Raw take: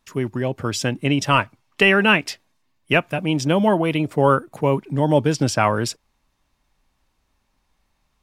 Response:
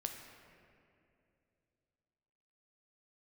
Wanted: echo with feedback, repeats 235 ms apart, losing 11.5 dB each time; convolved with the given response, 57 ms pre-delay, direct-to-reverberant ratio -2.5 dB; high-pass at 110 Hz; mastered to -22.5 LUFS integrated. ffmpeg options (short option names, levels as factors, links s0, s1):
-filter_complex "[0:a]highpass=110,aecho=1:1:235|470|705:0.266|0.0718|0.0194,asplit=2[s0][s1];[1:a]atrim=start_sample=2205,adelay=57[s2];[s1][s2]afir=irnorm=-1:irlink=0,volume=1.5[s3];[s0][s3]amix=inputs=2:normalize=0,volume=0.447"